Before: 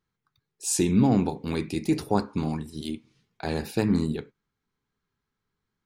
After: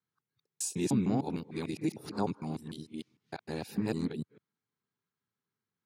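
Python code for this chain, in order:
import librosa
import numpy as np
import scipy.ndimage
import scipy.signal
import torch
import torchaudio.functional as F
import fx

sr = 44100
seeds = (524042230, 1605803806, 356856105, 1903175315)

y = fx.local_reverse(x, sr, ms=151.0)
y = scipy.signal.sosfilt(scipy.signal.butter(4, 100.0, 'highpass', fs=sr, output='sos'), y)
y = y * librosa.db_to_amplitude(-8.0)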